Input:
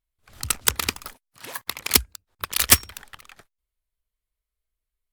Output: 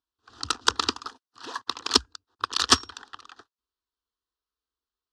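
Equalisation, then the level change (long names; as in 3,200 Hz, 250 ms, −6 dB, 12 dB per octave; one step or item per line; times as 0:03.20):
loudspeaker in its box 160–5,200 Hz, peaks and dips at 180 Hz −10 dB, 390 Hz −4 dB, 840 Hz −5 dB
phaser with its sweep stopped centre 590 Hz, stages 6
+6.5 dB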